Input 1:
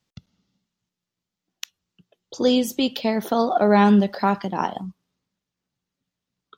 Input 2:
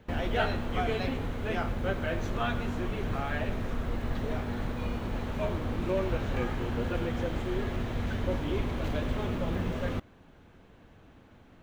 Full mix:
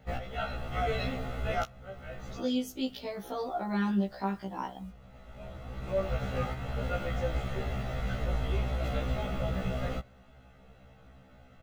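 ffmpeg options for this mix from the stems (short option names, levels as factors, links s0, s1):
-filter_complex "[0:a]acrusher=bits=8:mix=0:aa=0.000001,volume=0.282,asplit=2[s0][s1];[1:a]aecho=1:1:1.5:0.63,volume=1.06[s2];[s1]apad=whole_len=512896[s3];[s2][s3]sidechaincompress=threshold=0.00178:ratio=5:attack=11:release=845[s4];[s0][s4]amix=inputs=2:normalize=0,afftfilt=real='re*1.73*eq(mod(b,3),0)':imag='im*1.73*eq(mod(b,3),0)':win_size=2048:overlap=0.75"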